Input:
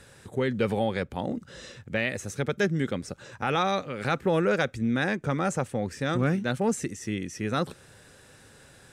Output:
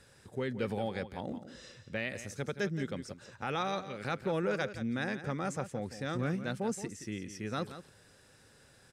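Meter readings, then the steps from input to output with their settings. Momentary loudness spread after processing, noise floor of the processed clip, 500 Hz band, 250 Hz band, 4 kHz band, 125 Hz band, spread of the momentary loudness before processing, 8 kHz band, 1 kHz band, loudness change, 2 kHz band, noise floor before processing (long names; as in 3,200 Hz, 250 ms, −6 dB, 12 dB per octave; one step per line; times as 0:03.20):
9 LU, −62 dBFS, −8.0 dB, −8.0 dB, −7.5 dB, −8.0 dB, 8 LU, −7.5 dB, −8.0 dB, −8.0 dB, −8.0 dB, −54 dBFS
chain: parametric band 5,000 Hz +5.5 dB 0.25 octaves
on a send: single-tap delay 172 ms −12 dB
on the sum: level −8.5 dB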